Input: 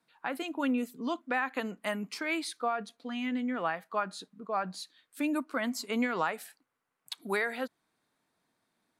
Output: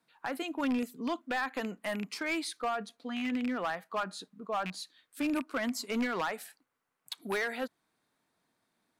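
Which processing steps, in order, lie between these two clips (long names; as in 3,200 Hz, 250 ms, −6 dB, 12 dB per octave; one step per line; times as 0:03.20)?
loose part that buzzes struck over −38 dBFS, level −28 dBFS
gain into a clipping stage and back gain 26.5 dB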